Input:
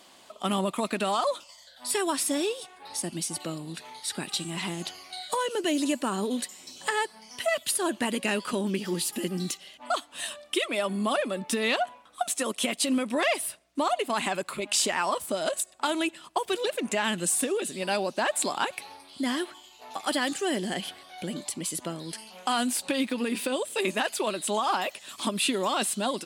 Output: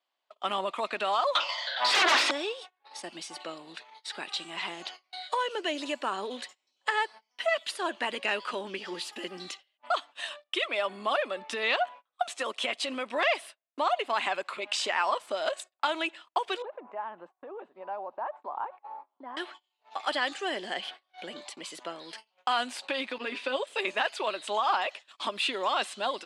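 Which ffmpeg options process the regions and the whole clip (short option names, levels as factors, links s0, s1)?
-filter_complex "[0:a]asettb=1/sr,asplit=3[s0][s1][s2];[s0]atrim=end=1.354[s3];[s1]atrim=start=1.35:end=2.31,asetpts=PTS-STARTPTS,afade=t=in:d=0.004:c=qsin,afade=t=out:st=0.956:d=0.004:c=qsin,acrossover=split=490 4900:gain=0.224 1 0.0631[s4][s5][s6];[s4][s5][s6]amix=inputs=3:normalize=0,bandreject=f=55.91:t=h:w=4,bandreject=f=111.82:t=h:w=4,bandreject=f=167.73:t=h:w=4,bandreject=f=223.64:t=h:w=4,bandreject=f=279.55:t=h:w=4,bandreject=f=335.46:t=h:w=4,bandreject=f=391.37:t=h:w=4,bandreject=f=447.28:t=h:w=4,bandreject=f=503.19:t=h:w=4,bandreject=f=559.1:t=h:w=4,aeval=exprs='0.133*sin(PI/2*8.91*val(0)/0.133)':c=same[s7];[s2]atrim=start=2.306[s8];[s3][s7]acrossfade=d=0.004:c1=hsin:c2=qsin[s9];[s9][s8]acrossfade=d=0.004:c1=qsin:c2=hsin,asettb=1/sr,asplit=3[s10][s11][s12];[s10]atrim=end=16.624[s13];[s11]atrim=start=16.62:end=19.37,asetpts=PTS-STARTPTS,afade=t=in:d=0.004:c=qsin,afade=t=out:st=2.746:d=0.004:c=qsin,acompressor=threshold=0.00631:ratio=2:attack=3.2:release=140:knee=1:detection=peak,lowpass=f=950:t=q:w=2.7[s14];[s12]atrim=start=19.366[s15];[s13][s14]acrossfade=d=0.004:c1=hsin:c2=qsin[s16];[s16][s15]acrossfade=d=0.004:c1=qsin:c2=hsin,asettb=1/sr,asplit=3[s17][s18][s19];[s17]atrim=end=23.184[s20];[s18]atrim=start=23.18:end=23.67,asetpts=PTS-STARTPTS,afade=t=in:d=0.004:c=qsin,afade=t=out:st=0.486:d=0.004:c=qsin,agate=range=0.0224:threshold=0.0251:ratio=3:release=100:detection=peak,highpass=110,lowpass=7000,aecho=1:1:7.3:0.52,atrim=end_sample=21609[s21];[s19]atrim=start=23.666[s22];[s20][s21]acrossfade=d=0.004:c1=hsin:c2=qsin[s23];[s23][s22]acrossfade=d=0.004:c1=qsin:c2=hsin,lowpass=3800,agate=range=0.0398:threshold=0.00708:ratio=16:detection=peak,highpass=580,volume=1.12"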